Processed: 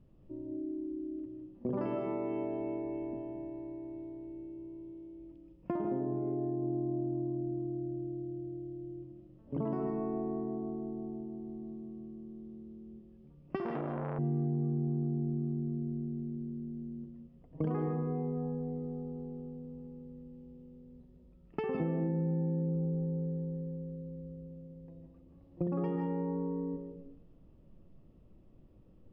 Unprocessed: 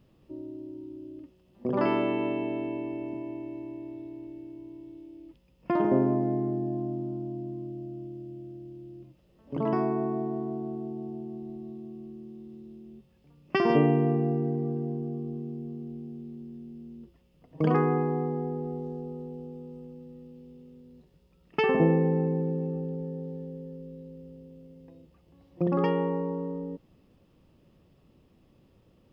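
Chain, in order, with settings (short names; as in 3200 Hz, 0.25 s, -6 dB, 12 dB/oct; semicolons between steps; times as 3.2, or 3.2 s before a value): digital reverb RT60 0.61 s, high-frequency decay 0.3×, pre-delay 0.115 s, DRR 3.5 dB; compressor 6:1, threshold -27 dBFS, peak gain reduction 10.5 dB; low shelf 220 Hz -6.5 dB; 5.77–6.63 elliptic low-pass 4600 Hz; tilt -4 dB/oct; 13.56–14.19 core saturation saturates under 760 Hz; gain -7.5 dB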